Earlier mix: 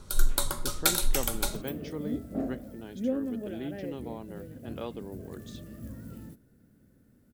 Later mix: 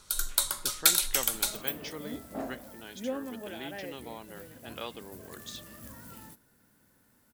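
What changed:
first sound −5.5 dB
second sound: add parametric band 930 Hz +13 dB 0.5 octaves
master: add tilt shelving filter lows −9.5 dB, about 810 Hz

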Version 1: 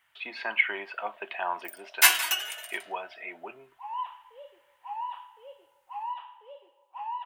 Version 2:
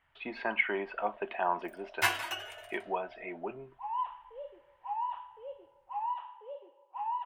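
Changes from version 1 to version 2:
second sound −3.5 dB
master: add spectral tilt −4.5 dB per octave

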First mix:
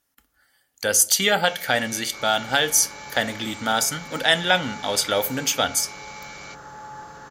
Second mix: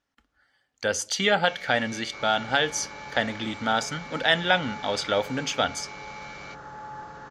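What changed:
speech: send −6.0 dB
master: add high-frequency loss of the air 140 metres

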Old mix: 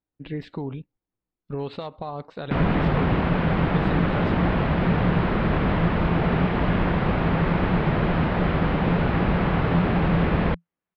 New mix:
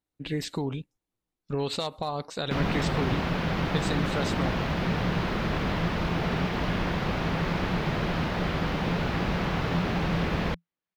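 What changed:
background −7.0 dB
master: remove high-frequency loss of the air 410 metres

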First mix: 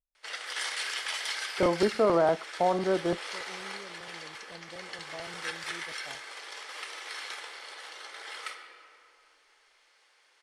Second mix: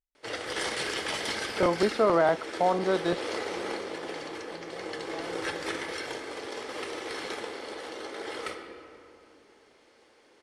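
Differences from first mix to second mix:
speech: remove moving average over 16 samples
background: remove high-pass filter 1,200 Hz 12 dB per octave

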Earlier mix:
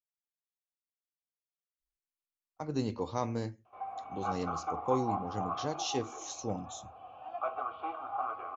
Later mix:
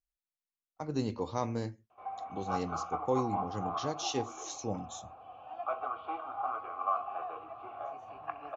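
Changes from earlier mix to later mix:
speech: entry −1.80 s
background: entry −1.75 s

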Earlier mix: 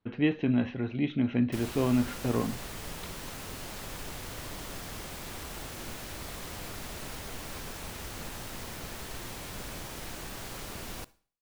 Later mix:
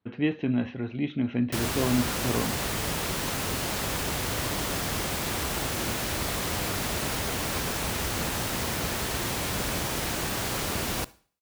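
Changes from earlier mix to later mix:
background +11.5 dB
master: add high-pass filter 49 Hz

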